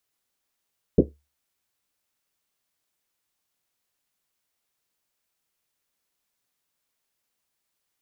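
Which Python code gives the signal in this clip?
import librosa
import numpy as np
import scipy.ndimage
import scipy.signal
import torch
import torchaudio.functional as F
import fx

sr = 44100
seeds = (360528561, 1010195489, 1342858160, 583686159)

y = fx.risset_drum(sr, seeds[0], length_s=1.1, hz=72.0, decay_s=0.3, noise_hz=320.0, noise_width_hz=330.0, noise_pct=75)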